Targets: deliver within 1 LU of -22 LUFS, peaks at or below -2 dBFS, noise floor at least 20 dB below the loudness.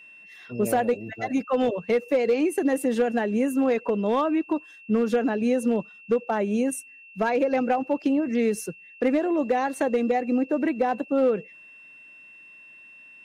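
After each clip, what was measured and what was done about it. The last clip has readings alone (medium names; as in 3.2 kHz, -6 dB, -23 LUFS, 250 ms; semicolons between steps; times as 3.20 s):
clipped samples 0.6%; clipping level -15.0 dBFS; steady tone 2.7 kHz; tone level -46 dBFS; loudness -24.5 LUFS; peak level -15.0 dBFS; loudness target -22.0 LUFS
-> clip repair -15 dBFS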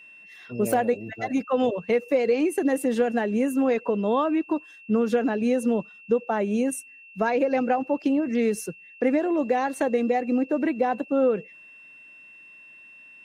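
clipped samples 0.0%; steady tone 2.7 kHz; tone level -46 dBFS
-> band-stop 2.7 kHz, Q 30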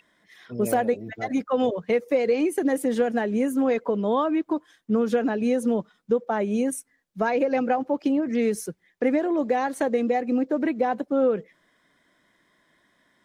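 steady tone not found; loudness -24.5 LUFS; peak level -10.0 dBFS; loudness target -22.0 LUFS
-> trim +2.5 dB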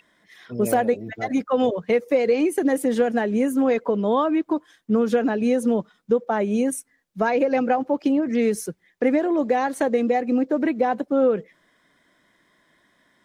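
loudness -22.0 LUFS; peak level -7.5 dBFS; noise floor -65 dBFS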